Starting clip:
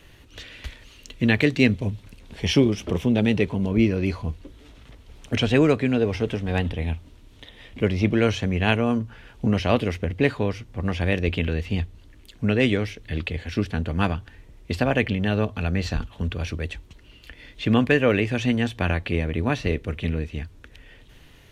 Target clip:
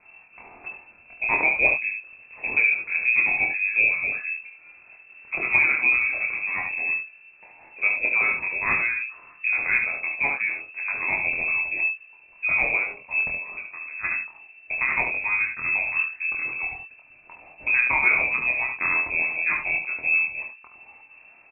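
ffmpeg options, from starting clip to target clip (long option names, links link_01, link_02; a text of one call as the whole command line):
ffmpeg -i in.wav -filter_complex "[0:a]asplit=3[link_01][link_02][link_03];[link_01]afade=type=out:start_time=13.33:duration=0.02[link_04];[link_02]acompressor=threshold=-31dB:ratio=6,afade=type=in:start_time=13.33:duration=0.02,afade=type=out:start_time=14.03:duration=0.02[link_05];[link_03]afade=type=in:start_time=14.03:duration=0.02[link_06];[link_04][link_05][link_06]amix=inputs=3:normalize=0,flanger=delay=3.8:depth=8.7:regen=51:speed=0.72:shape=triangular,asplit=2[link_07][link_08];[link_08]adelay=24,volume=-4dB[link_09];[link_07][link_09]amix=inputs=2:normalize=0,aecho=1:1:27|72:0.398|0.473,lowpass=frequency=2300:width_type=q:width=0.5098,lowpass=frequency=2300:width_type=q:width=0.6013,lowpass=frequency=2300:width_type=q:width=0.9,lowpass=frequency=2300:width_type=q:width=2.563,afreqshift=-2700" out.wav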